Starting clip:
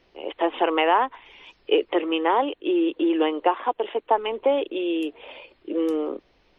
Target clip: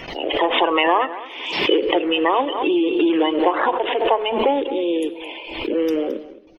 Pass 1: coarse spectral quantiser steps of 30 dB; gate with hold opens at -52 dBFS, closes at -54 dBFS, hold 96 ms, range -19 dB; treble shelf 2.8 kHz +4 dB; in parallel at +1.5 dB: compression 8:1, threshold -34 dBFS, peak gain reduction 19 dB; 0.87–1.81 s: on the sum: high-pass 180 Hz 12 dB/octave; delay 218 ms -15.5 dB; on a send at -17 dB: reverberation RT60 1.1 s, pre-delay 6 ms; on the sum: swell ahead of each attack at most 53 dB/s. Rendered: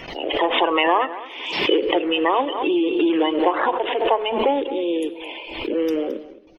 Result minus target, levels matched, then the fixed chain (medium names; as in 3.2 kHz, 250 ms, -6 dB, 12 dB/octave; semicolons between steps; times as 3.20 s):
compression: peak gain reduction +5 dB
coarse spectral quantiser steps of 30 dB; gate with hold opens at -52 dBFS, closes at -54 dBFS, hold 96 ms, range -19 dB; treble shelf 2.8 kHz +4 dB; in parallel at +1.5 dB: compression 8:1, threshold -28 dBFS, peak gain reduction 14 dB; 0.87–1.81 s: on the sum: high-pass 180 Hz 12 dB/octave; delay 218 ms -15.5 dB; on a send at -17 dB: reverberation RT60 1.1 s, pre-delay 6 ms; on the sum: swell ahead of each attack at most 53 dB/s